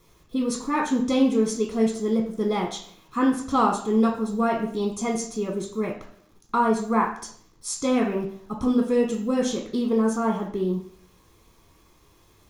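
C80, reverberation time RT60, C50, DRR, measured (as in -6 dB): 11.0 dB, 0.60 s, 7.0 dB, 0.5 dB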